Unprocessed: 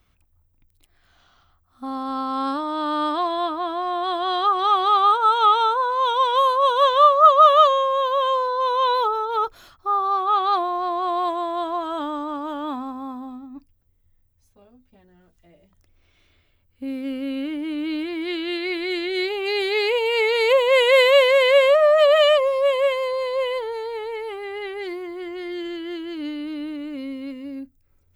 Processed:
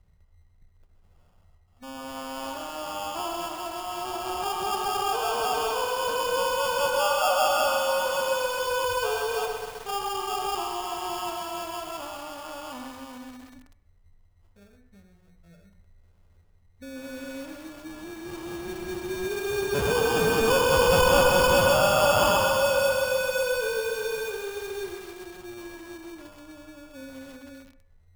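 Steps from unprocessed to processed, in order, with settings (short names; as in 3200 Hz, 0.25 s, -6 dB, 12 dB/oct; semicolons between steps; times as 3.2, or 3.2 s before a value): notches 60/120/180/240/300/360/420 Hz; spectral gain 19.74–22.57, 910–8000 Hz +12 dB; EQ curve 200 Hz 0 dB, 290 Hz -23 dB, 430 Hz -5 dB, 770 Hz -16 dB, 1300 Hz -17 dB, 2200 Hz -21 dB, 5000 Hz -12 dB; in parallel at -1.5 dB: limiter -29 dBFS, peak gain reduction 15.5 dB; on the sum: sample-and-hold 22×; on a send at -7 dB: reverb RT60 0.60 s, pre-delay 60 ms; on the sum: lo-fi delay 0.13 s, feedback 80%, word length 7-bit, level -7 dB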